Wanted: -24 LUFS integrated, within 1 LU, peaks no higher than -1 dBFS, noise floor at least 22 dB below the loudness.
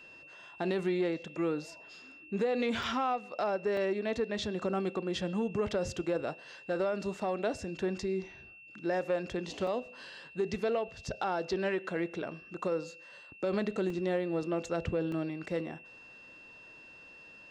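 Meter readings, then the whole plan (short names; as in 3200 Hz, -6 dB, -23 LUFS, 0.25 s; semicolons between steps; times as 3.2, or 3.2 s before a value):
dropouts 5; longest dropout 2.8 ms; steady tone 2700 Hz; tone level -51 dBFS; loudness -34.0 LUFS; peak -22.0 dBFS; loudness target -24.0 LUFS
-> interpolate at 2.83/3.77/9.67/13.9/15.12, 2.8 ms; notch 2700 Hz, Q 30; gain +10 dB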